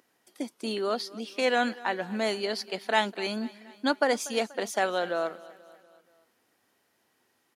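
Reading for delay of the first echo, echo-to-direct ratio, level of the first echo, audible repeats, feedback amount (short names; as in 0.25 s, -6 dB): 0.241 s, -18.5 dB, -20.0 dB, 3, 54%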